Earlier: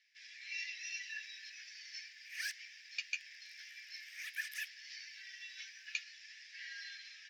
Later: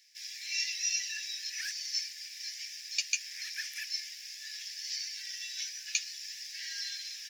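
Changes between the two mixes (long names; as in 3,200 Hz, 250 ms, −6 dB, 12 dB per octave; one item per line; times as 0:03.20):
speech: remove low-pass filter 2,200 Hz 12 dB per octave
background: entry −0.80 s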